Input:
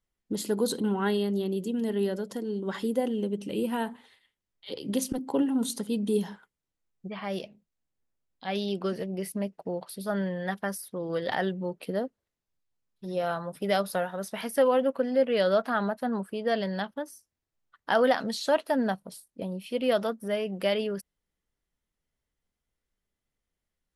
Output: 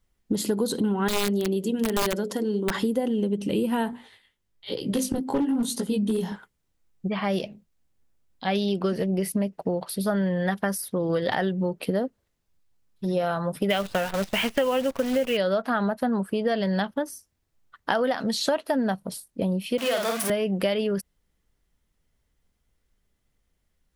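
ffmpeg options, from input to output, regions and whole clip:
-filter_complex "[0:a]asettb=1/sr,asplit=3[a][b][c];[a]atrim=end=1.084[d];[b]atrim=start=1.08:end=2.75,asetpts=PTS-STARTPTS,afade=t=in:d=0.004:c=qsin,afade=t=out:st=1.666:d=0.004:c=qsin,highpass=f=210:p=1,bandreject=f=60:t=h:w=6,bandreject=f=120:t=h:w=6,bandreject=f=180:t=h:w=6,bandreject=f=240:t=h:w=6,bandreject=f=300:t=h:w=6,bandreject=f=360:t=h:w=6,bandreject=f=420:t=h:w=6,bandreject=f=480:t=h:w=6,bandreject=f=540:t=h:w=6,aeval=exprs='(mod(14.1*val(0)+1,2)-1)/14.1':c=same[e];[c]atrim=start=2.746[f];[d][e]acrossfade=d=0.004:c1=hsin:c2=qsin[g];[g][f]acrossfade=d=0.004:c1=qsin:c2=hsin,asettb=1/sr,asplit=3[h][i][j];[h]atrim=end=3.914[k];[i]atrim=start=3.91:end=6.32,asetpts=PTS-STARTPTS,afade=t=in:d=0.004:c=qsin,afade=t=out:st=2.406:d=0.004:c=qsin,flanger=delay=16:depth=6.3:speed=1.1,volume=25dB,asoftclip=hard,volume=-25dB[l];[j]atrim=start=6.316[m];[k][l]acrossfade=d=0.004:c1=hsin:c2=qsin[n];[n][m]acrossfade=d=0.004:c1=qsin:c2=hsin,asettb=1/sr,asplit=3[o][p][q];[o]atrim=end=13.704[r];[p]atrim=start=13.7:end=15.37,asetpts=PTS-STARTPTS,afade=t=in:d=0.004:c=qsin,afade=t=out:st=1.666:d=0.004:c=qsin,lowpass=f=2.8k:t=q:w=3.9,acrusher=bits=7:dc=4:mix=0:aa=0.000001[s];[q]atrim=start=15.366[t];[r][s]acrossfade=d=0.004:c1=hsin:c2=qsin[u];[u][t]acrossfade=d=0.004:c1=qsin:c2=hsin,asettb=1/sr,asplit=3[v][w][x];[v]atrim=end=19.784[y];[w]atrim=start=19.78:end=20.3,asetpts=PTS-STARTPTS,afade=t=in:d=0.004:c=qsin,afade=t=out:st=0.516:d=0.004:c=qsin,aeval=exprs='val(0)+0.5*0.0398*sgn(val(0))':c=same,highpass=f=1.1k:p=1,asplit=2[z][aa];[aa]adelay=49,volume=-3.5dB[ab];[z][ab]amix=inputs=2:normalize=0,atrim=end_sample=22932[ac];[x]atrim=start=20.296[ad];[y][ac]acrossfade=d=0.004:c1=hsin:c2=qsin[ae];[ae][ad]acrossfade=d=0.004:c1=qsin:c2=hsin,lowshelf=f=170:g=6.5,acompressor=threshold=-30dB:ratio=6,volume=8.5dB"

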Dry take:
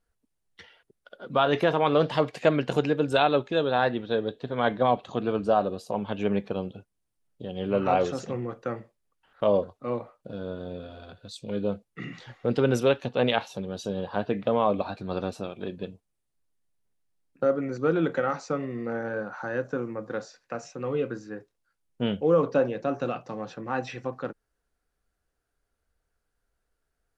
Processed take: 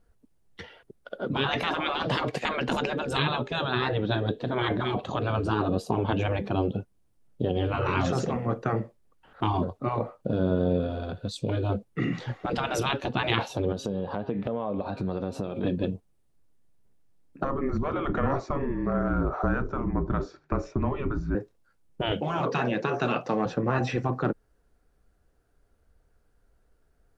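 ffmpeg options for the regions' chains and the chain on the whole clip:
-filter_complex "[0:a]asettb=1/sr,asplit=3[a][b][c];[a]atrim=end=13.724[d];[b]atrim=start=13.72:end=15.64,asetpts=PTS-STARTPTS,afade=t=in:d=0.004:c=qsin,afade=t=out:st=1.916:d=0.004:c=qsin,bandreject=f=135.4:t=h:w=4,bandreject=f=270.8:t=h:w=4,bandreject=f=406.2:t=h:w=4,bandreject=f=541.6:t=h:w=4,bandreject=f=677:t=h:w=4,bandreject=f=812.4:t=h:w=4,bandreject=f=947.8:t=h:w=4,bandreject=f=1.0832k:t=h:w=4,bandreject=f=1.2186k:t=h:w=4,bandreject=f=1.354k:t=h:w=4,bandreject=f=1.4894k:t=h:w=4,bandreject=f=1.6248k:t=h:w=4,bandreject=f=1.7602k:t=h:w=4,bandreject=f=1.8956k:t=h:w=4,bandreject=f=2.031k:t=h:w=4,bandreject=f=2.1664k:t=h:w=4,bandreject=f=2.3018k:t=h:w=4,bandreject=f=2.4372k:t=h:w=4,bandreject=f=2.5726k:t=h:w=4,bandreject=f=2.708k:t=h:w=4,bandreject=f=2.8434k:t=h:w=4,bandreject=f=2.9788k:t=h:w=4,bandreject=f=3.1142k:t=h:w=4,bandreject=f=3.2496k:t=h:w=4,bandreject=f=3.385k:t=h:w=4,bandreject=f=3.5204k:t=h:w=4,bandreject=f=3.6558k:t=h:w=4,bandreject=f=3.7912k:t=h:w=4,bandreject=f=3.9266k:t=h:w=4,bandreject=f=4.062k:t=h:w=4,bandreject=f=4.1974k:t=h:w=4,bandreject=f=4.3328k:t=h:w=4,bandreject=f=4.4682k:t=h:w=4,bandreject=f=4.6036k:t=h:w=4,bandreject=f=4.739k:t=h:w=4,acompressor=threshold=-39dB:ratio=5:attack=3.2:release=140:knee=1:detection=peak[e];[c]atrim=start=15.636[f];[d][e]acrossfade=d=0.004:c1=hsin:c2=qsin[g];[g][f]acrossfade=d=0.004:c1=qsin:c2=hsin,asettb=1/sr,asplit=3[h][i][j];[h]atrim=end=17.444[k];[i]atrim=start=17.44:end=21.35,asetpts=PTS-STARTPTS,afade=t=in:d=0.004:c=qsin,afade=t=out:st=3.906:d=0.004:c=qsin,afreqshift=-150,lowpass=f=1.8k:p=1[l];[j]atrim=start=21.346[m];[k][l]acrossfade=d=0.004:c1=hsin:c2=qsin[n];[n][m]acrossfade=d=0.004:c1=qsin:c2=hsin,asettb=1/sr,asplit=3[o][p][q];[o]atrim=end=22.114[r];[p]atrim=start=22.11:end=23.46,asetpts=PTS-STARTPTS,afade=t=in:d=0.004:c=qsin,afade=t=out:st=1.346:d=0.004:c=qsin,highpass=f=310:p=1,equalizer=f=2.8k:w=0.51:g=6[s];[q]atrim=start=23.456[t];[r][s]acrossfade=d=0.004:c1=hsin:c2=qsin[u];[u][t]acrossfade=d=0.004:c1=qsin:c2=hsin,afftfilt=real='re*lt(hypot(re,im),0.126)':imag='im*lt(hypot(re,im),0.126)':win_size=1024:overlap=0.75,tiltshelf=f=920:g=5.5,volume=8.5dB"

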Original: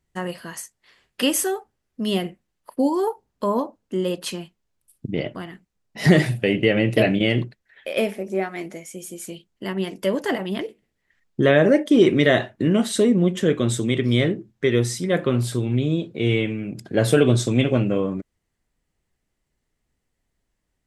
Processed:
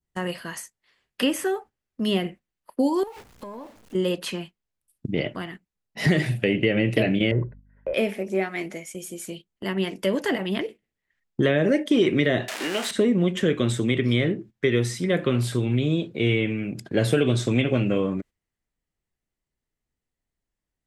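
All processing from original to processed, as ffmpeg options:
-filter_complex "[0:a]asettb=1/sr,asplit=3[a][b][c];[a]atrim=end=3.034[d];[b]atrim=start=3.03:end=3.95,asetpts=PTS-STARTPTS,afade=t=in:d=0.004:c=qsin,afade=t=out:st=0.916:d=0.004:c=qsin,aeval=exprs='val(0)+0.5*0.0158*sgn(val(0))':c=same,acompressor=threshold=-32dB:ratio=16:attack=3.2:release=140:knee=1:detection=peak,aeval=exprs='(tanh(10*val(0)+0.45)-tanh(0.45))/10':c=same[e];[c]atrim=start=3.946[f];[d][e]acrossfade=d=0.004:c1=hsin:c2=qsin[g];[g][f]acrossfade=d=0.004:c1=qsin:c2=hsin,asettb=1/sr,asplit=3[h][i][j];[h]atrim=end=7.314[k];[i]atrim=start=7.31:end=7.94,asetpts=PTS-STARTPTS,afade=t=in:d=0.004:c=qsin,afade=t=out:st=0.626:d=0.004:c=qsin,lowpass=f=1.3k:w=0.5412,lowpass=f=1.3k:w=1.3066,aecho=1:1:2:0.61,atrim=end_sample=27783,aeval=exprs='val(0)+0.00501*(sin(2*PI*50*n/s)+sin(2*PI*2*50*n/s)/2+sin(2*PI*3*50*n/s)/3+sin(2*PI*4*50*n/s)/4+sin(2*PI*5*50*n/s)/5)':c=same[l];[j]atrim=start=7.936[m];[k][l]acrossfade=d=0.004:c1=hsin:c2=qsin[n];[n][m]acrossfade=d=0.004:c1=qsin:c2=hsin,asettb=1/sr,asplit=3[o][p][q];[o]atrim=end=12.484[r];[p]atrim=start=12.48:end=12.91,asetpts=PTS-STARTPTS,afade=t=in:d=0.004:c=qsin,afade=t=out:st=0.426:d=0.004:c=qsin,aeval=exprs='val(0)+0.5*0.0631*sgn(val(0))':c=same,highpass=400,lowpass=7.7k,aemphasis=mode=production:type=riaa[s];[q]atrim=start=12.906[t];[r][s]acrossfade=d=0.004:c1=hsin:c2=qsin[u];[u][t]acrossfade=d=0.004:c1=qsin:c2=hsin,agate=range=-10dB:threshold=-40dB:ratio=16:detection=peak,adynamicequalizer=threshold=0.0141:dfrequency=2300:dqfactor=0.86:tfrequency=2300:tqfactor=0.86:attack=5:release=100:ratio=0.375:range=3:mode=boostabove:tftype=bell,acrossover=split=530|2400[v][w][x];[v]acompressor=threshold=-18dB:ratio=4[y];[w]acompressor=threshold=-30dB:ratio=4[z];[x]acompressor=threshold=-34dB:ratio=4[aa];[y][z][aa]amix=inputs=3:normalize=0"

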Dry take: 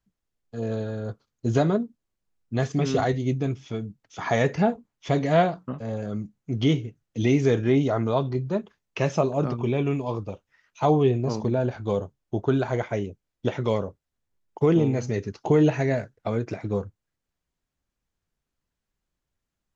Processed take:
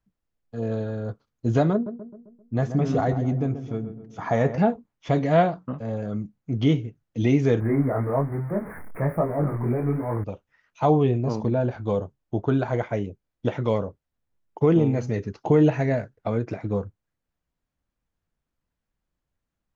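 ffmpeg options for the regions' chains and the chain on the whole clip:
-filter_complex "[0:a]asettb=1/sr,asplit=3[a][b][c];[a]atrim=end=1.734[d];[b]atrim=start=1.73:end=4.58,asetpts=PTS-STARTPTS,afade=t=in:d=0.004:c=qsin,afade=t=out:st=2.846:d=0.004:c=qsin,equalizer=f=3.2k:t=o:w=1.7:g=-7.5,asplit=2[e][f];[f]adelay=131,lowpass=f=1.5k:p=1,volume=-10dB,asplit=2[g][h];[h]adelay=131,lowpass=f=1.5k:p=1,volume=0.52,asplit=2[i][j];[j]adelay=131,lowpass=f=1.5k:p=1,volume=0.52,asplit=2[k][l];[l]adelay=131,lowpass=f=1.5k:p=1,volume=0.52,asplit=2[m][n];[n]adelay=131,lowpass=f=1.5k:p=1,volume=0.52,asplit=2[o][p];[p]adelay=131,lowpass=f=1.5k:p=1,volume=0.52[q];[e][g][i][k][m][o][q]amix=inputs=7:normalize=0,atrim=end_sample=125685[r];[c]atrim=start=4.576[s];[d][r]acrossfade=d=0.004:c1=hsin:c2=qsin[t];[t][s]acrossfade=d=0.004:c1=qsin:c2=hsin,asettb=1/sr,asplit=3[u][v][w];[u]atrim=end=7.604[x];[v]atrim=start=7.6:end=10.24,asetpts=PTS-STARTPTS,afade=t=in:d=0.004:c=qsin,afade=t=out:st=2.636:d=0.004:c=qsin,aeval=exprs='val(0)+0.5*0.0355*sgn(val(0))':c=same,flanger=delay=17.5:depth=7.4:speed=1.2,asuperstop=centerf=4600:order=20:qfactor=0.68[y];[w]atrim=start=10.236[z];[x][y]acrossfade=d=0.004:c1=hsin:c2=qsin[aa];[aa][z]acrossfade=d=0.004:c1=qsin:c2=hsin,highshelf=f=3.1k:g=-9.5,bandreject=f=390:w=12,volume=1.5dB"

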